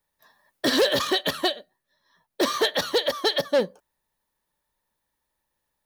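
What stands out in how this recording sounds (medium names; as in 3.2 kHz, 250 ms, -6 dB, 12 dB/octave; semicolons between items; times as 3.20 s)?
noise floor -80 dBFS; spectral tilt -2.5 dB/octave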